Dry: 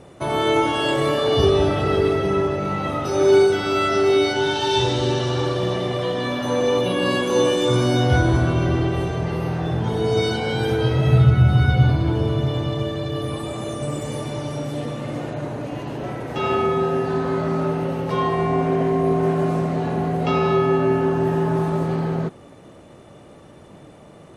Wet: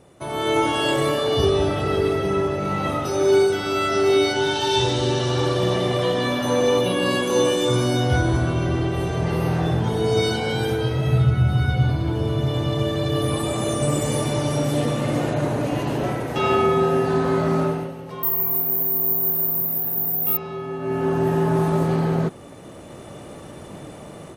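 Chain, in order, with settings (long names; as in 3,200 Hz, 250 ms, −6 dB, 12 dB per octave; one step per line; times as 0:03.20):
0:18.23–0:20.37: bad sample-rate conversion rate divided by 3×, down none, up zero stuff
high-shelf EQ 9,300 Hz +11.5 dB
automatic gain control gain up to 13.5 dB
level −7 dB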